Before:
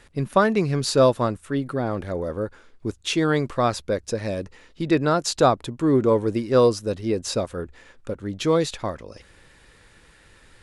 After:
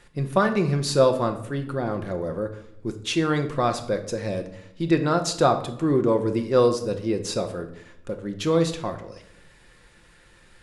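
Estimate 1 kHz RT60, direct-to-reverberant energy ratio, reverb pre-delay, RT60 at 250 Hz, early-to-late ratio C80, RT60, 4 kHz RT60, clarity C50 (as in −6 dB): 0.75 s, 5.5 dB, 6 ms, 1.0 s, 14.5 dB, 0.80 s, 0.55 s, 11.0 dB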